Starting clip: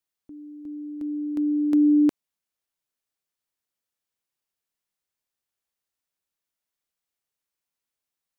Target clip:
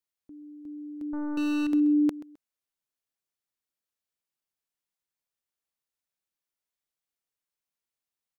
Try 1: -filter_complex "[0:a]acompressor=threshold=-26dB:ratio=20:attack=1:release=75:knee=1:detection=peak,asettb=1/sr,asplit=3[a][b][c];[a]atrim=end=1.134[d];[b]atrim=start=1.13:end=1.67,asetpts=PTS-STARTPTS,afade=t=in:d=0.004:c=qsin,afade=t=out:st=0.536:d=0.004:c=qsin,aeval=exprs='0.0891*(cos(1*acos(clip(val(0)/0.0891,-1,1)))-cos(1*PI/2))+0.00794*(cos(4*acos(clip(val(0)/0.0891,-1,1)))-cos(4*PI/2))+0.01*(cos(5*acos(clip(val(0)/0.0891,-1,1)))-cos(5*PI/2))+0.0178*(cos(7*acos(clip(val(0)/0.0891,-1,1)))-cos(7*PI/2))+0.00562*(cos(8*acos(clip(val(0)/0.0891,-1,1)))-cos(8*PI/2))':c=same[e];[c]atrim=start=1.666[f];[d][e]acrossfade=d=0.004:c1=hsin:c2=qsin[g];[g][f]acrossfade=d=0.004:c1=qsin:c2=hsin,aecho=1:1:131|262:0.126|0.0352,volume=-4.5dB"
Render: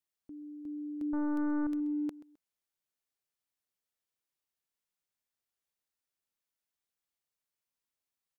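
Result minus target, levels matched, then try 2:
compressor: peak gain reduction +11 dB
-filter_complex "[0:a]asettb=1/sr,asplit=3[a][b][c];[a]atrim=end=1.134[d];[b]atrim=start=1.13:end=1.67,asetpts=PTS-STARTPTS,afade=t=in:d=0.004:c=qsin,afade=t=out:st=0.536:d=0.004:c=qsin,aeval=exprs='0.0891*(cos(1*acos(clip(val(0)/0.0891,-1,1)))-cos(1*PI/2))+0.00794*(cos(4*acos(clip(val(0)/0.0891,-1,1)))-cos(4*PI/2))+0.01*(cos(5*acos(clip(val(0)/0.0891,-1,1)))-cos(5*PI/2))+0.0178*(cos(7*acos(clip(val(0)/0.0891,-1,1)))-cos(7*PI/2))+0.00562*(cos(8*acos(clip(val(0)/0.0891,-1,1)))-cos(8*PI/2))':c=same[e];[c]atrim=start=1.666[f];[d][e]acrossfade=d=0.004:c1=hsin:c2=qsin[g];[g][f]acrossfade=d=0.004:c1=qsin:c2=hsin,aecho=1:1:131|262:0.126|0.0352,volume=-4.5dB"

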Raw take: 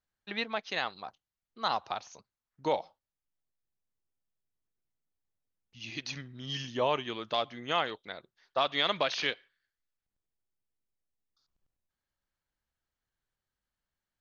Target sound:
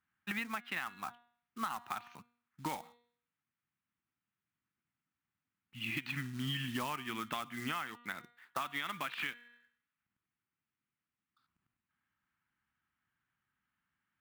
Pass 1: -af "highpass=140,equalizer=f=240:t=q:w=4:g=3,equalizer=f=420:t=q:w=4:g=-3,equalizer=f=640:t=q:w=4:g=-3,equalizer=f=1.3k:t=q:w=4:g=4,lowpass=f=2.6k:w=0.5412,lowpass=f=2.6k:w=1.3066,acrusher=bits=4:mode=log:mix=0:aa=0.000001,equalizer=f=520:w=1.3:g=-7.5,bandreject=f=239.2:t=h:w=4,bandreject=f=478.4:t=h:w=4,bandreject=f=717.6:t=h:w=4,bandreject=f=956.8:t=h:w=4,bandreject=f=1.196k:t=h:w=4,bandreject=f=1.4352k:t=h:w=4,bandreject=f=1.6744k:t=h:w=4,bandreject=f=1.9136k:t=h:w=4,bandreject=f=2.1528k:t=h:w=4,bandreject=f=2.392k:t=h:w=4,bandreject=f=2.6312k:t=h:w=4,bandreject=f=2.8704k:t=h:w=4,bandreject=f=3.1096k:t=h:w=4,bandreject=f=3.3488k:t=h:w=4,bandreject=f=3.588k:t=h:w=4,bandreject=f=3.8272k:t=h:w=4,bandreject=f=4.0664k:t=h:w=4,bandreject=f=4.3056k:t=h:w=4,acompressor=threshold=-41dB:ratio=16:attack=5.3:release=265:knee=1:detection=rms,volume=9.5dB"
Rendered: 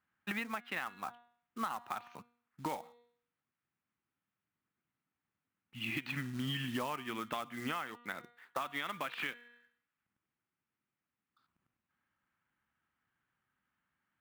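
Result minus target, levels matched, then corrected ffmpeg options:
500 Hz band +4.5 dB
-af "highpass=140,equalizer=f=240:t=q:w=4:g=3,equalizer=f=420:t=q:w=4:g=-3,equalizer=f=640:t=q:w=4:g=-3,equalizer=f=1.3k:t=q:w=4:g=4,lowpass=f=2.6k:w=0.5412,lowpass=f=2.6k:w=1.3066,acrusher=bits=4:mode=log:mix=0:aa=0.000001,equalizer=f=520:w=1.3:g=-17.5,bandreject=f=239.2:t=h:w=4,bandreject=f=478.4:t=h:w=4,bandreject=f=717.6:t=h:w=4,bandreject=f=956.8:t=h:w=4,bandreject=f=1.196k:t=h:w=4,bandreject=f=1.4352k:t=h:w=4,bandreject=f=1.6744k:t=h:w=4,bandreject=f=1.9136k:t=h:w=4,bandreject=f=2.1528k:t=h:w=4,bandreject=f=2.392k:t=h:w=4,bandreject=f=2.6312k:t=h:w=4,bandreject=f=2.8704k:t=h:w=4,bandreject=f=3.1096k:t=h:w=4,bandreject=f=3.3488k:t=h:w=4,bandreject=f=3.588k:t=h:w=4,bandreject=f=3.8272k:t=h:w=4,bandreject=f=4.0664k:t=h:w=4,bandreject=f=4.3056k:t=h:w=4,acompressor=threshold=-41dB:ratio=16:attack=5.3:release=265:knee=1:detection=rms,volume=9.5dB"

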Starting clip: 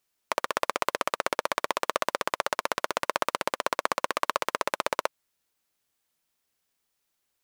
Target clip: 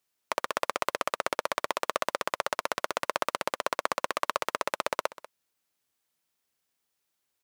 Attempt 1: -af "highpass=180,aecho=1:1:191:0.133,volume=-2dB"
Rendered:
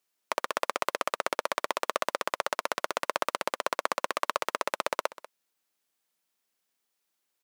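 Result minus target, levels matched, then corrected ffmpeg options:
125 Hz band -5.0 dB
-af "highpass=64,aecho=1:1:191:0.133,volume=-2dB"

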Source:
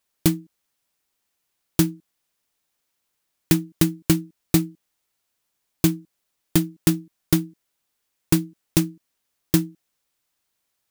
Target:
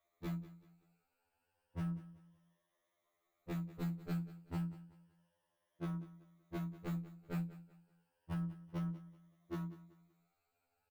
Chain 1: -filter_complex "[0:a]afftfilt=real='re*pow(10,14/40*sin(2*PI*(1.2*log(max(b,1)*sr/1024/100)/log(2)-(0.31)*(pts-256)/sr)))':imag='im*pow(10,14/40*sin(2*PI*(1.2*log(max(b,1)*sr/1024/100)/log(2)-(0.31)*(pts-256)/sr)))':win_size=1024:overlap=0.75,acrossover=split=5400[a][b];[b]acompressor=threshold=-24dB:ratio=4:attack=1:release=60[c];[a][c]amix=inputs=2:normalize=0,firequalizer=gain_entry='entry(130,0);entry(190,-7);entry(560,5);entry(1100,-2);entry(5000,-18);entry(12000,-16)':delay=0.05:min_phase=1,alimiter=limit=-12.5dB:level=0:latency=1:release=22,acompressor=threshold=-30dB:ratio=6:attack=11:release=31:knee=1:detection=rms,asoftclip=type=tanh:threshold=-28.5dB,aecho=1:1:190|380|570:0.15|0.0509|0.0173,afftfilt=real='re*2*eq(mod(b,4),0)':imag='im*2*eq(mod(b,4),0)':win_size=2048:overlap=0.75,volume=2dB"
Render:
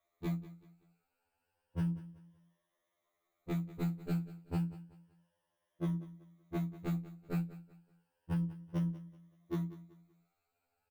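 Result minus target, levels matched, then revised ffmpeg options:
soft clip: distortion -7 dB
-filter_complex "[0:a]afftfilt=real='re*pow(10,14/40*sin(2*PI*(1.2*log(max(b,1)*sr/1024/100)/log(2)-(0.31)*(pts-256)/sr)))':imag='im*pow(10,14/40*sin(2*PI*(1.2*log(max(b,1)*sr/1024/100)/log(2)-(0.31)*(pts-256)/sr)))':win_size=1024:overlap=0.75,acrossover=split=5400[a][b];[b]acompressor=threshold=-24dB:ratio=4:attack=1:release=60[c];[a][c]amix=inputs=2:normalize=0,firequalizer=gain_entry='entry(130,0);entry(190,-7);entry(560,5);entry(1100,-2);entry(5000,-18);entry(12000,-16)':delay=0.05:min_phase=1,alimiter=limit=-12.5dB:level=0:latency=1:release=22,acompressor=threshold=-30dB:ratio=6:attack=11:release=31:knee=1:detection=rms,asoftclip=type=tanh:threshold=-36.5dB,aecho=1:1:190|380|570:0.15|0.0509|0.0173,afftfilt=real='re*2*eq(mod(b,4),0)':imag='im*2*eq(mod(b,4),0)':win_size=2048:overlap=0.75,volume=2dB"

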